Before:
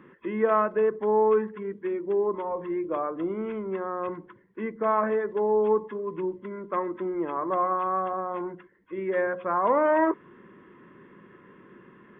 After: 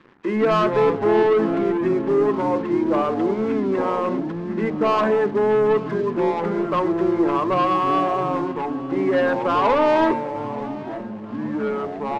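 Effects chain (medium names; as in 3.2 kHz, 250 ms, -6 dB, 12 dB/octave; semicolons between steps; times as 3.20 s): high-pass 120 Hz 12 dB/octave; de-hum 178.8 Hz, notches 2; waveshaping leveller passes 3; ever faster or slower copies 96 ms, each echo -4 st, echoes 3, each echo -6 dB; distance through air 74 m; feedback delay 886 ms, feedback 53%, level -19 dB; trim -2 dB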